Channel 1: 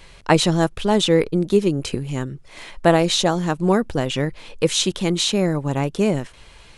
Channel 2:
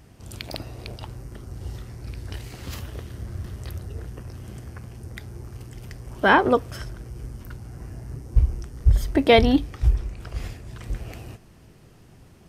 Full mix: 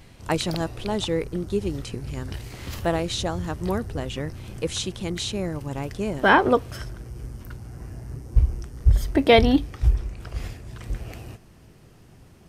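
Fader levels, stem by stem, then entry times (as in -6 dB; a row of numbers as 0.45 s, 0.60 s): -9.0 dB, 0.0 dB; 0.00 s, 0.00 s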